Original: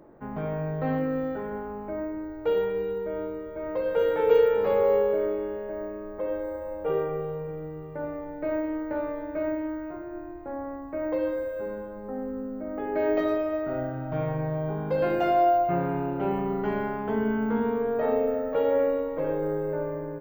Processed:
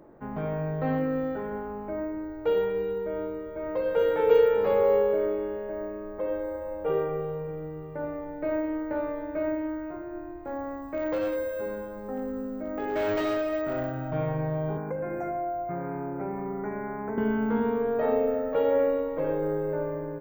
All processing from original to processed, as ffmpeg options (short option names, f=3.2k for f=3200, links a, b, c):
-filter_complex "[0:a]asettb=1/sr,asplit=3[a][b][c];[a]atrim=end=10.454[d];[b]atrim=start=10.45:end=14.11,asetpts=PTS-STARTPTS,afade=t=in:d=0.004:c=qsin,afade=t=out:st=3.656:d=0.004:c=qsin,highshelf=f=2.7k:g=11,asoftclip=type=hard:threshold=-24dB[e];[c]atrim=start=14.106[f];[d][e]acrossfade=d=0.004:c1=hsin:c2=qsin[g];[g][f]acrossfade=d=0.004:c1=qsin:c2=hsin,asettb=1/sr,asplit=3[h][i][j];[h]atrim=end=14.774[k];[i]atrim=start=14.77:end=17.18,asetpts=PTS-STARTPTS,afade=t=in:d=0.004:c=qsin,afade=t=out:st=2.406:d=0.004:c=qsin,equalizer=f=11k:t=o:w=0.6:g=12,acrossover=split=110|220[l][m][n];[l]acompressor=threshold=-54dB:ratio=4[o];[m]acompressor=threshold=-41dB:ratio=4[p];[n]acompressor=threshold=-32dB:ratio=4[q];[o][p][q]amix=inputs=3:normalize=0,asuperstop=centerf=3700:order=20:qfactor=1.2[r];[j]atrim=start=17.176[s];[k][r]acrossfade=d=0.004:c1=hsin:c2=qsin[t];[t][s]acrossfade=d=0.004:c1=qsin:c2=hsin"